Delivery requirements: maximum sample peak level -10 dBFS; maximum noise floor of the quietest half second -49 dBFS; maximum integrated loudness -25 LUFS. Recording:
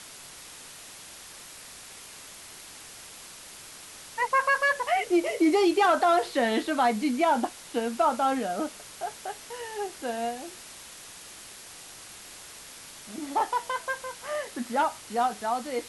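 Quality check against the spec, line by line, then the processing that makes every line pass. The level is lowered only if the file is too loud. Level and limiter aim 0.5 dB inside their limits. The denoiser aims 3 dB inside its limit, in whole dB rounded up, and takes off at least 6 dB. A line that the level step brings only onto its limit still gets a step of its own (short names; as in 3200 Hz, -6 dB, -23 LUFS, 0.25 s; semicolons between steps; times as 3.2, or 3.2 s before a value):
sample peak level -13.0 dBFS: OK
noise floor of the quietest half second -46 dBFS: fail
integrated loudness -27.0 LUFS: OK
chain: denoiser 6 dB, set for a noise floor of -46 dBFS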